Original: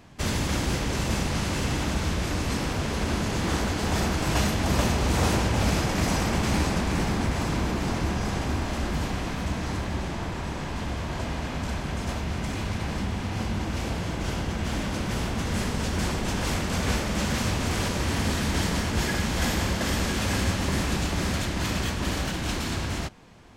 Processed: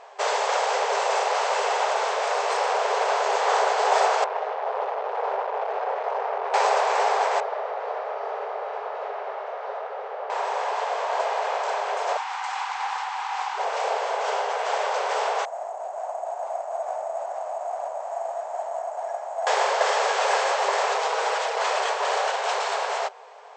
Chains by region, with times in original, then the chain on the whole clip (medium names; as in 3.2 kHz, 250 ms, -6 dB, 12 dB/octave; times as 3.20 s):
4.24–6.54 s: hard clipper -27 dBFS + tape spacing loss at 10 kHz 43 dB
7.40–10.30 s: tape spacing loss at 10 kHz 38 dB + frequency shift -360 Hz + short-mantissa float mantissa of 8-bit
12.17–13.58 s: brick-wall FIR high-pass 740 Hz + loudspeaker Doppler distortion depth 0.57 ms
15.45–19.47 s: two resonant band-passes 440 Hz, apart 1.2 oct + careless resampling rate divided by 6×, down none, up hold
20.94–21.61 s: comb filter that takes the minimum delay 6.2 ms + loudspeaker Doppler distortion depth 0.74 ms
whole clip: FFT band-pass 390–8300 Hz; peaking EQ 770 Hz +14.5 dB 1.7 oct